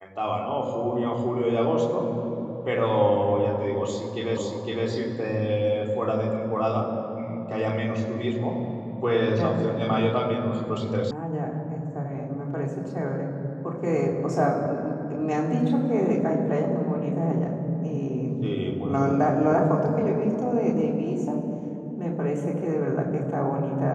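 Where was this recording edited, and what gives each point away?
4.37 repeat of the last 0.51 s
11.11 sound cut off

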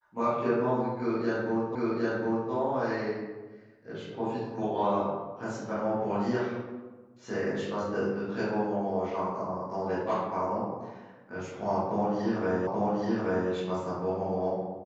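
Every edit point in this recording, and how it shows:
1.75 repeat of the last 0.76 s
12.67 repeat of the last 0.83 s

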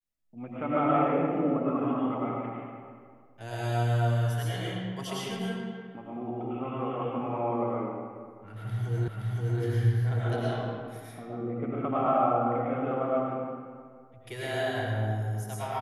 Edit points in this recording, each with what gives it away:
9.08 repeat of the last 0.52 s

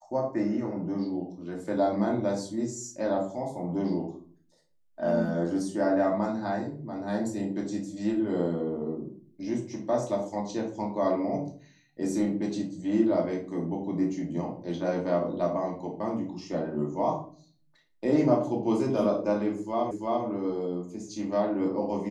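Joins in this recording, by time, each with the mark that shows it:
19.91 repeat of the last 0.34 s

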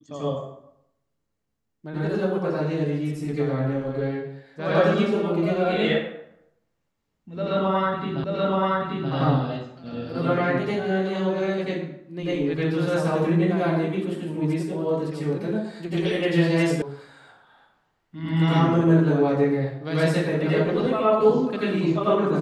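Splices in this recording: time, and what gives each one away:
8.24 repeat of the last 0.88 s
16.82 sound cut off

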